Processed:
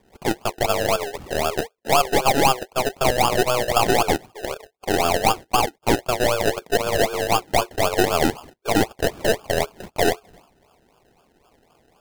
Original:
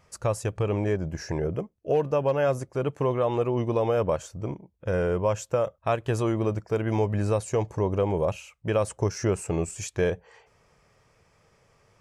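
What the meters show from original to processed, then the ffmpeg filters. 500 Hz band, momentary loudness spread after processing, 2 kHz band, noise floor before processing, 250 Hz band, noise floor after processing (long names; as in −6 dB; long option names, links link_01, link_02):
+3.5 dB, 7 LU, +13.0 dB, −65 dBFS, +3.5 dB, −62 dBFS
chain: -af "highpass=frequency=160:width_type=q:width=0.5412,highpass=frequency=160:width_type=q:width=1.307,lowpass=frequency=3500:width_type=q:width=0.5176,lowpass=frequency=3500:width_type=q:width=0.7071,lowpass=frequency=3500:width_type=q:width=1.932,afreqshift=250,acrusher=samples=31:mix=1:aa=0.000001:lfo=1:lforange=18.6:lforate=3.9,aeval=exprs='0.237*(cos(1*acos(clip(val(0)/0.237,-1,1)))-cos(1*PI/2))+0.0335*(cos(4*acos(clip(val(0)/0.237,-1,1)))-cos(4*PI/2))+0.00668*(cos(8*acos(clip(val(0)/0.237,-1,1)))-cos(8*PI/2))':channel_layout=same,volume=5.5dB"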